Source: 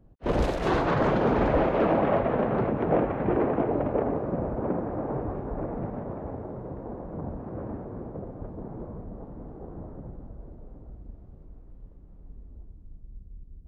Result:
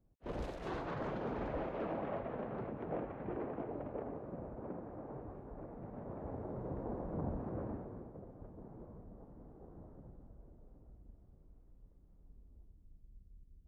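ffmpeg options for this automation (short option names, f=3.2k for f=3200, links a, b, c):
-af "volume=-4dB,afade=t=in:st=5.81:d=0.97:silence=0.237137,afade=t=out:st=7.41:d=0.7:silence=0.316228"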